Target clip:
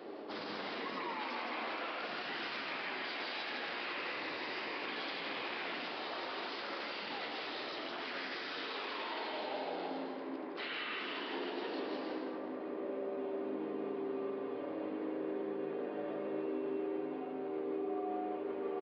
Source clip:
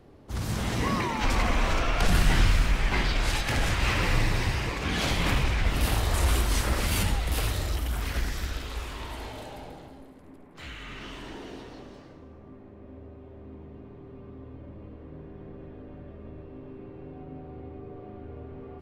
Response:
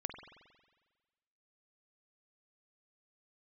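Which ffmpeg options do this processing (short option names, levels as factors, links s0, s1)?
-filter_complex "[0:a]highpass=f=290:w=0.5412,highpass=f=290:w=1.3066,areverse,acompressor=threshold=0.00562:ratio=6,areverse,alimiter=level_in=7.94:limit=0.0631:level=0:latency=1:release=85,volume=0.126,flanger=delay=9.2:depth=9.8:regen=-43:speed=0.11:shape=triangular,aecho=1:1:163:0.562,asplit=2[s0][s1];[1:a]atrim=start_sample=2205[s2];[s1][s2]afir=irnorm=-1:irlink=0,volume=1.06[s3];[s0][s3]amix=inputs=2:normalize=0,aresample=11025,aresample=44100,volume=2.51"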